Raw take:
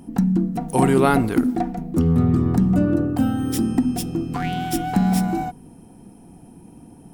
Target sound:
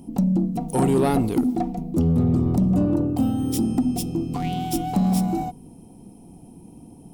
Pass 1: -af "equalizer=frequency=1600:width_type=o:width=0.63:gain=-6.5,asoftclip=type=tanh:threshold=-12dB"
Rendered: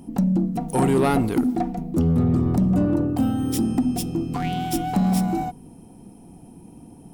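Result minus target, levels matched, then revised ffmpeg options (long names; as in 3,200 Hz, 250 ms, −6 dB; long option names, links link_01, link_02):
2,000 Hz band +5.0 dB
-af "equalizer=frequency=1600:width_type=o:width=0.63:gain=-18,asoftclip=type=tanh:threshold=-12dB"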